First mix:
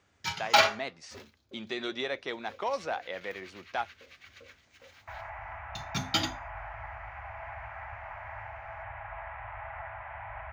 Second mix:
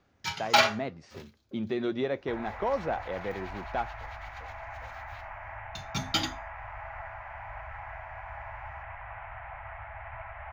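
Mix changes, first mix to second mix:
speech: add spectral tilt −4.5 dB per octave
second sound: entry −2.80 s
master: remove high-pass filter 47 Hz

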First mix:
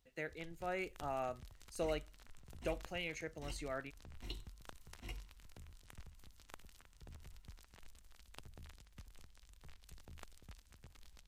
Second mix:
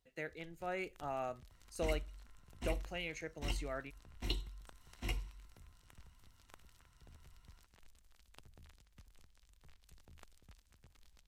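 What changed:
first sound −5.0 dB
second sound +9.0 dB

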